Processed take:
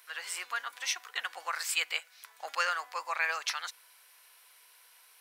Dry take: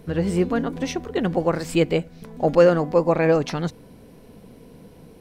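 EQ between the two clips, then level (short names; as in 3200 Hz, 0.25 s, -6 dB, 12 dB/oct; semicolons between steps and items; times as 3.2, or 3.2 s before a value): HPF 1200 Hz 24 dB/oct; high shelf 8500 Hz +7.5 dB; 0.0 dB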